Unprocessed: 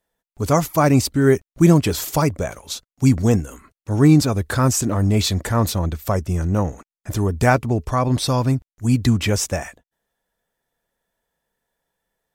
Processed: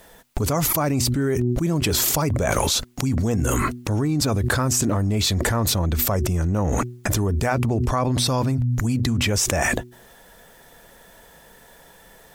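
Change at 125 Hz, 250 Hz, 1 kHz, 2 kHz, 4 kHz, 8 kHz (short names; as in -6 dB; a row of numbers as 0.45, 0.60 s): -3.0, -5.0, -2.5, +0.5, +3.0, +3.0 dB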